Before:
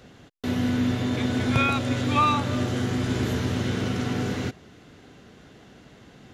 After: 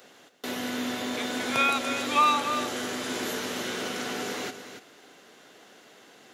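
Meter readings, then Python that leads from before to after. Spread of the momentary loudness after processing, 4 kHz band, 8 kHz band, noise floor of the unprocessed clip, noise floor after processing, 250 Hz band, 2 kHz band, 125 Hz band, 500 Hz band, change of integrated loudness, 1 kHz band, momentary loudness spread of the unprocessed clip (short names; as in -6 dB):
14 LU, +2.0 dB, +5.0 dB, -51 dBFS, -54 dBFS, -8.5 dB, +1.0 dB, -22.5 dB, -2.0 dB, -2.5 dB, +0.5 dB, 7 LU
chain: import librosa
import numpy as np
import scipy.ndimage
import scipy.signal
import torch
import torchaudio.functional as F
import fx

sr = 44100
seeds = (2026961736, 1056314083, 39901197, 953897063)

p1 = scipy.signal.sosfilt(scipy.signal.butter(2, 430.0, 'highpass', fs=sr, output='sos'), x)
p2 = fx.high_shelf(p1, sr, hz=8300.0, db=12.0)
y = p2 + fx.echo_single(p2, sr, ms=287, db=-10.0, dry=0)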